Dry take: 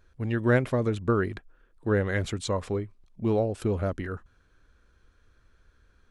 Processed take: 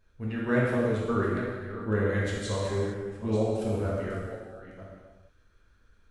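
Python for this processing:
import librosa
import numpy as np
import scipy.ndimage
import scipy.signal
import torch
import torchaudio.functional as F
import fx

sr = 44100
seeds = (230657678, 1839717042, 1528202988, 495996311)

y = fx.reverse_delay(x, sr, ms=483, wet_db=-11)
y = fx.rev_gated(y, sr, seeds[0], gate_ms=490, shape='falling', drr_db=-6.0)
y = y * librosa.db_to_amplitude(-8.0)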